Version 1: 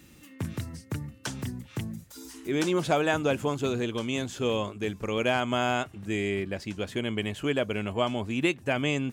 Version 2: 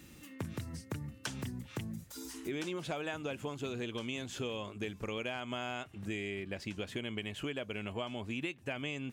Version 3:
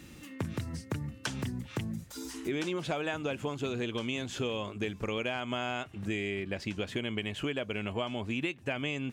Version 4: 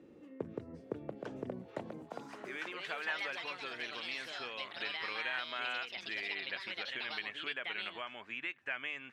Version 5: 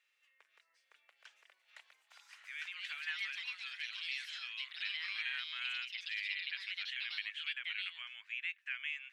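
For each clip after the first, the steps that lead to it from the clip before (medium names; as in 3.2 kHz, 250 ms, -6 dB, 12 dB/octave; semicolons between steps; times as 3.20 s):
dynamic bell 2.7 kHz, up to +5 dB, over -46 dBFS, Q 1.3; compression 6:1, threshold -35 dBFS, peak gain reduction 15.5 dB; trim -1 dB
treble shelf 9.7 kHz -8 dB; trim +5 dB
band-pass sweep 450 Hz -> 1.7 kHz, 1.48–2.60 s; ever faster or slower copies 770 ms, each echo +4 st, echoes 2; hum notches 50/100/150 Hz; trim +3 dB
ladder high-pass 1.7 kHz, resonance 25%; trim +5 dB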